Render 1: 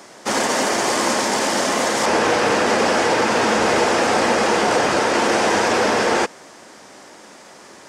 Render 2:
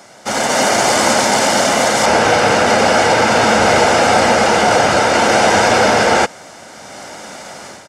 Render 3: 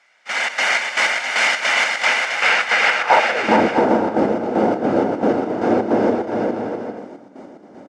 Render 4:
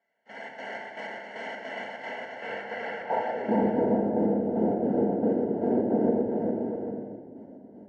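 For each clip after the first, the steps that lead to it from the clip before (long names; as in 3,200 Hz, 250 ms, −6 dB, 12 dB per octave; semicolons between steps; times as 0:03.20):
parametric band 95 Hz +4 dB 1.3 octaves; comb filter 1.4 ms, depth 42%; automatic gain control gain up to 10.5 dB
gate pattern "...xx.xx..x" 155 BPM −12 dB; band-pass filter sweep 2,200 Hz → 300 Hz, 0:02.86–0:03.51; on a send: bouncing-ball delay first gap 410 ms, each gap 0.6×, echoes 5; on the sum: level +5.5 dB
moving average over 36 samples; rectangular room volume 1,500 cubic metres, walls mixed, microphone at 1.6 metres; level −8.5 dB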